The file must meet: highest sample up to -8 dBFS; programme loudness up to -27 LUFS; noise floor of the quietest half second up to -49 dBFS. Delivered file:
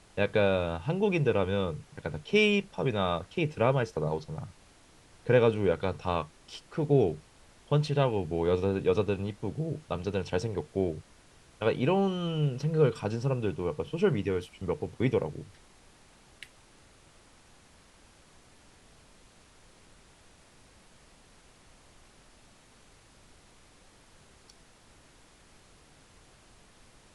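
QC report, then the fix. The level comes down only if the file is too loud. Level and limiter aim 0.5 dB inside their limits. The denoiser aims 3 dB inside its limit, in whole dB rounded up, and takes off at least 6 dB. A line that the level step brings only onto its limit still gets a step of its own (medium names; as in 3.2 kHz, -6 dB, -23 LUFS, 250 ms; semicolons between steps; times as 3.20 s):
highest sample -9.5 dBFS: pass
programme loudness -29.0 LUFS: pass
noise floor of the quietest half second -58 dBFS: pass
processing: none needed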